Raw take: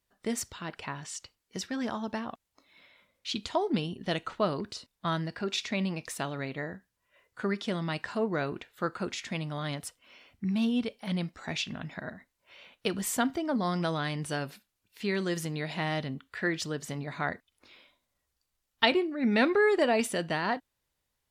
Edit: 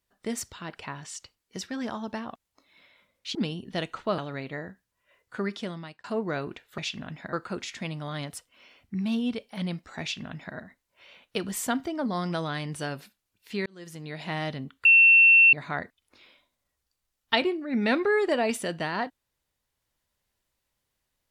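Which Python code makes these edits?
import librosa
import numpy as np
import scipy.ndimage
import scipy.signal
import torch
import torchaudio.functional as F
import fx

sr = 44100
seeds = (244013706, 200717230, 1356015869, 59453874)

y = fx.edit(x, sr, fx.cut(start_s=3.35, length_s=0.33),
    fx.cut(start_s=4.51, length_s=1.72),
    fx.fade_out_span(start_s=7.58, length_s=0.51),
    fx.duplicate(start_s=11.51, length_s=0.55, to_s=8.83),
    fx.fade_in_span(start_s=15.16, length_s=0.68),
    fx.bleep(start_s=16.35, length_s=0.68, hz=2700.0, db=-12.5), tone=tone)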